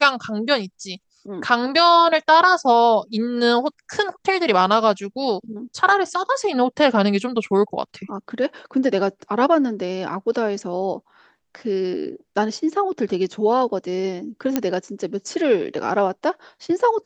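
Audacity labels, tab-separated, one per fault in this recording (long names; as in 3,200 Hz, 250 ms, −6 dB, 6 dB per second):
14.560000	14.560000	click −6 dBFS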